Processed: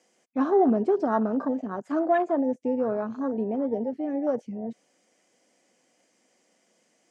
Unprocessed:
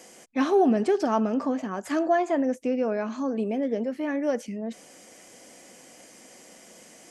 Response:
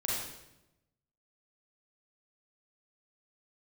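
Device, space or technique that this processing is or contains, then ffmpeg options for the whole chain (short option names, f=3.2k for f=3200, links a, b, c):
over-cleaned archive recording: -af "highpass=140,lowpass=7.6k,afwtdn=0.0316"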